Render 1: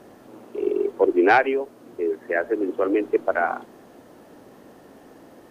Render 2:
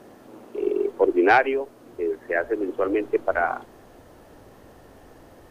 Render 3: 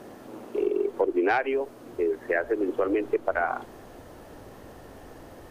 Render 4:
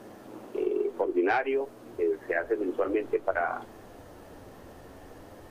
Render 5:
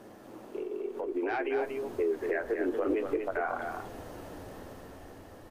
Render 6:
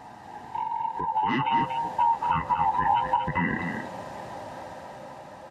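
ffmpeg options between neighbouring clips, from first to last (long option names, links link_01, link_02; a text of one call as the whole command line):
ffmpeg -i in.wav -af "asubboost=boost=9:cutoff=76" out.wav
ffmpeg -i in.wav -af "acompressor=threshold=-25dB:ratio=4,volume=3dB" out.wav
ffmpeg -i in.wav -af "flanger=delay=9.1:depth=2.8:regen=-42:speed=0.54:shape=triangular,volume=1.5dB" out.wav
ffmpeg -i in.wav -af "alimiter=level_in=1.5dB:limit=-24dB:level=0:latency=1:release=147,volume=-1.5dB,dynaudnorm=framelen=350:gausssize=7:maxgain=7dB,aecho=1:1:237:0.531,volume=-3.5dB" out.wav
ffmpeg -i in.wav -af "afftfilt=real='real(if(lt(b,1008),b+24*(1-2*mod(floor(b/24),2)),b),0)':imag='imag(if(lt(b,1008),b+24*(1-2*mod(floor(b/24),2)),b),0)':win_size=2048:overlap=0.75,highpass=110,lowpass=7300,volume=6.5dB" out.wav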